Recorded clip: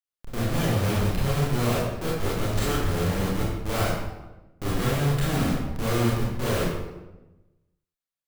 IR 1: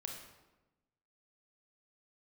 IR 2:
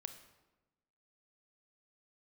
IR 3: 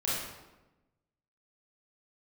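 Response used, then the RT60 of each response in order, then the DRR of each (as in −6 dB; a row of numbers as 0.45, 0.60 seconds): 3; 1.1, 1.1, 1.1 seconds; 1.5, 8.5, −8.0 decibels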